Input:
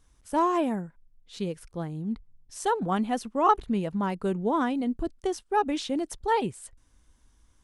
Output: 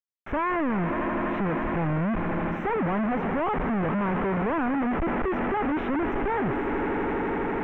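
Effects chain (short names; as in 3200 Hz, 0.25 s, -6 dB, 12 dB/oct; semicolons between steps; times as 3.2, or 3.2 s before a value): half-waves squared off; in parallel at +1 dB: limiter -20.5 dBFS, peak gain reduction 9.5 dB; on the sum: compressor 2:1, threshold -24 dBFS, peak gain reduction 7.5 dB; on a send: swelling echo 82 ms, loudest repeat 8, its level -17.5 dB; on the sum: companded quantiser 2-bit; inverse Chebyshev low-pass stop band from 4200 Hz, stop band 40 dB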